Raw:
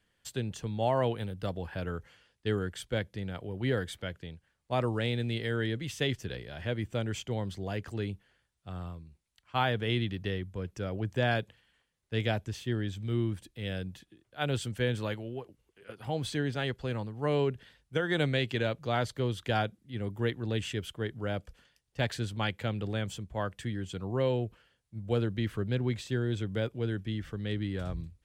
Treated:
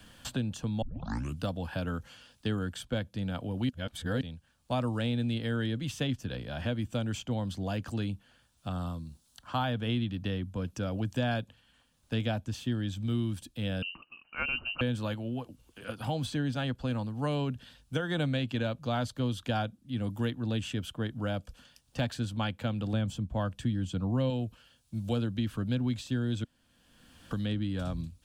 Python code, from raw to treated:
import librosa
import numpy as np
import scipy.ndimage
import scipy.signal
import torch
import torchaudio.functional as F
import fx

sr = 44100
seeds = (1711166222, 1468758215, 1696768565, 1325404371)

y = fx.peak_eq(x, sr, hz=2400.0, db=-10.0, octaves=0.43, at=(8.72, 9.64))
y = fx.freq_invert(y, sr, carrier_hz=2900, at=(13.82, 14.81))
y = fx.tilt_eq(y, sr, slope=-2.0, at=(22.93, 24.3))
y = fx.edit(y, sr, fx.tape_start(start_s=0.82, length_s=0.62),
    fx.reverse_span(start_s=3.69, length_s=0.52),
    fx.room_tone_fill(start_s=26.44, length_s=0.87), tone=tone)
y = fx.graphic_eq_31(y, sr, hz=(250, 400, 2000), db=(7, -12, -11))
y = fx.band_squash(y, sr, depth_pct=70)